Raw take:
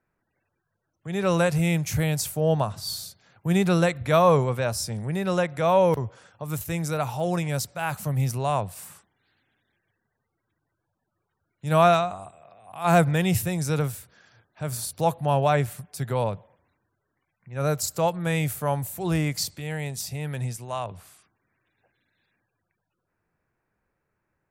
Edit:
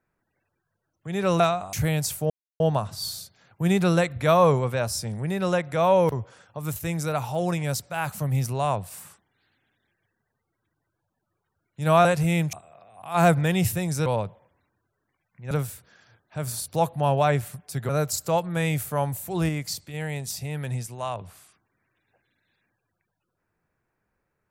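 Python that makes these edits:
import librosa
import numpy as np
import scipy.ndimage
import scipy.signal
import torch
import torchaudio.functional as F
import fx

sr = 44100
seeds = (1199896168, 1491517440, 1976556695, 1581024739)

y = fx.edit(x, sr, fx.swap(start_s=1.4, length_s=0.48, other_s=11.9, other_length_s=0.33),
    fx.insert_silence(at_s=2.45, length_s=0.3),
    fx.move(start_s=16.14, length_s=1.45, to_s=13.76),
    fx.clip_gain(start_s=19.19, length_s=0.45, db=-3.5), tone=tone)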